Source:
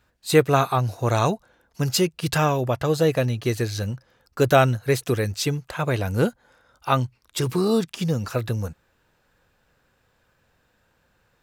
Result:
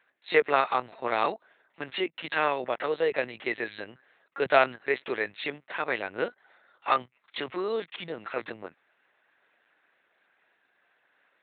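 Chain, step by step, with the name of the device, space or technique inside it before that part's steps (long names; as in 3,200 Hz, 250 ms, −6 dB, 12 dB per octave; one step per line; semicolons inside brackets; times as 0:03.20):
talking toy (linear-prediction vocoder at 8 kHz pitch kept; high-pass filter 450 Hz 12 dB per octave; parametric band 2,000 Hz +8.5 dB 0.59 octaves)
level −3.5 dB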